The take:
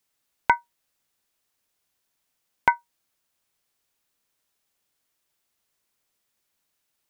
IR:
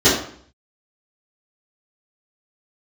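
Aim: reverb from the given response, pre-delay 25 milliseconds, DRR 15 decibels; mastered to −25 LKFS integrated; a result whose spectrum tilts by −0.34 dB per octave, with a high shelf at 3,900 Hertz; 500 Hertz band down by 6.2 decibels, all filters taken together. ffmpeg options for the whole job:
-filter_complex "[0:a]equalizer=frequency=500:width_type=o:gain=-8.5,highshelf=frequency=3900:gain=5,asplit=2[link_01][link_02];[1:a]atrim=start_sample=2205,adelay=25[link_03];[link_02][link_03]afir=irnorm=-1:irlink=0,volume=-39dB[link_04];[link_01][link_04]amix=inputs=2:normalize=0,volume=2dB"

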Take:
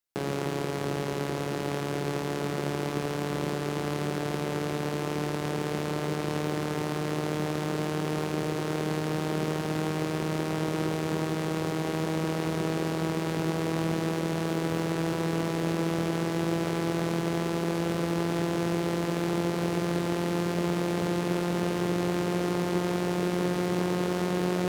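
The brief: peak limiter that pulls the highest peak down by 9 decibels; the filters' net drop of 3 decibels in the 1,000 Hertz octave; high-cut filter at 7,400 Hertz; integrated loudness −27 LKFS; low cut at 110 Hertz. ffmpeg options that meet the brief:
ffmpeg -i in.wav -af "highpass=110,lowpass=7400,equalizer=frequency=1000:width_type=o:gain=-4,volume=8dB,alimiter=limit=-17dB:level=0:latency=1" out.wav

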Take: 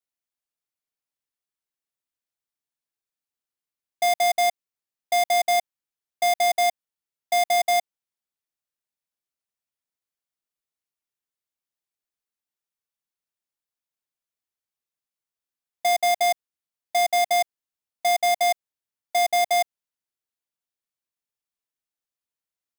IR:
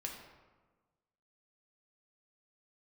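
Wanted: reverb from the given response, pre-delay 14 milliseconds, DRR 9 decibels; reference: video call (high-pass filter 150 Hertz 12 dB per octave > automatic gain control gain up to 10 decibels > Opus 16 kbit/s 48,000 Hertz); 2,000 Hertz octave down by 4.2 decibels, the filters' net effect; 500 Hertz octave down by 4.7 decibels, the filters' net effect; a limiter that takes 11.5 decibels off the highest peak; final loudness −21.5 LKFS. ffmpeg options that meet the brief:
-filter_complex "[0:a]equalizer=frequency=500:width_type=o:gain=-8.5,equalizer=frequency=2000:width_type=o:gain=-4,alimiter=level_in=3.5dB:limit=-24dB:level=0:latency=1,volume=-3.5dB,asplit=2[link_01][link_02];[1:a]atrim=start_sample=2205,adelay=14[link_03];[link_02][link_03]afir=irnorm=-1:irlink=0,volume=-8dB[link_04];[link_01][link_04]amix=inputs=2:normalize=0,highpass=150,dynaudnorm=maxgain=10dB,volume=12.5dB" -ar 48000 -c:a libopus -b:a 16k

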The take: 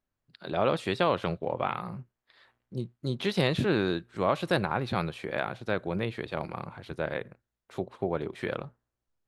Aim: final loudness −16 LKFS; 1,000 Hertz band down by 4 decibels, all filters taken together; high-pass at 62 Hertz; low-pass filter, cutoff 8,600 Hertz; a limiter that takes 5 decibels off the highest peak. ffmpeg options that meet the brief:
ffmpeg -i in.wav -af "highpass=62,lowpass=8600,equalizer=frequency=1000:width_type=o:gain=-5.5,volume=17.5dB,alimiter=limit=-1dB:level=0:latency=1" out.wav

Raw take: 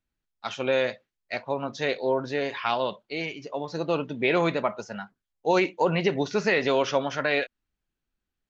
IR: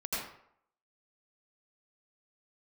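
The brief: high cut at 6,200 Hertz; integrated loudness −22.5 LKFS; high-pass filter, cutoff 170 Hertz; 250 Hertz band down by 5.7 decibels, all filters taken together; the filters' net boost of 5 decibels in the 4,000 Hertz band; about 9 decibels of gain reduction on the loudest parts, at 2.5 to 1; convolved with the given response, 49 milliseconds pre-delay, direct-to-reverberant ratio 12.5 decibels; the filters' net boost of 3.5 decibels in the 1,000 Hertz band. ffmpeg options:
-filter_complex "[0:a]highpass=170,lowpass=6200,equalizer=frequency=250:width_type=o:gain=-8,equalizer=frequency=1000:width_type=o:gain=4.5,equalizer=frequency=4000:width_type=o:gain=6.5,acompressor=threshold=-31dB:ratio=2.5,asplit=2[link_01][link_02];[1:a]atrim=start_sample=2205,adelay=49[link_03];[link_02][link_03]afir=irnorm=-1:irlink=0,volume=-17.5dB[link_04];[link_01][link_04]amix=inputs=2:normalize=0,volume=10.5dB"

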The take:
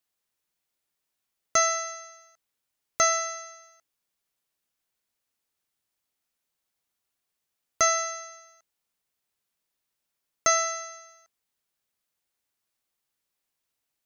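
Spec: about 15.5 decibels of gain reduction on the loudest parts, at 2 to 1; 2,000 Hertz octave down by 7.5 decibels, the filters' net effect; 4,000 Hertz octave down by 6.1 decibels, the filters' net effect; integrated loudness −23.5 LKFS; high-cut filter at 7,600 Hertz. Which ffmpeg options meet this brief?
ffmpeg -i in.wav -af "lowpass=7600,equalizer=frequency=2000:width_type=o:gain=-6.5,equalizer=frequency=4000:width_type=o:gain=-6,acompressor=threshold=-50dB:ratio=2,volume=20.5dB" out.wav

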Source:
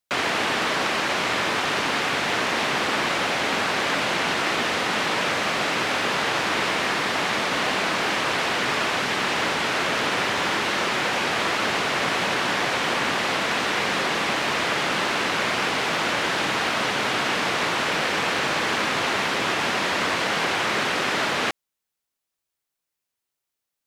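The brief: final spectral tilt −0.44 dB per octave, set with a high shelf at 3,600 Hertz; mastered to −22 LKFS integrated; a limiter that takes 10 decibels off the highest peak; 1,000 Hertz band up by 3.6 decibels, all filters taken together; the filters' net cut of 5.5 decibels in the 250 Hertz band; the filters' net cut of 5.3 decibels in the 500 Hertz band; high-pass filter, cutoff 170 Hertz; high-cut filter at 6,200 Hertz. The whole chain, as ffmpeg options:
ffmpeg -i in.wav -af "highpass=170,lowpass=6200,equalizer=frequency=250:width_type=o:gain=-3.5,equalizer=frequency=500:width_type=o:gain=-8.5,equalizer=frequency=1000:width_type=o:gain=6,highshelf=frequency=3600:gain=8,volume=3.5dB,alimiter=limit=-14.5dB:level=0:latency=1" out.wav

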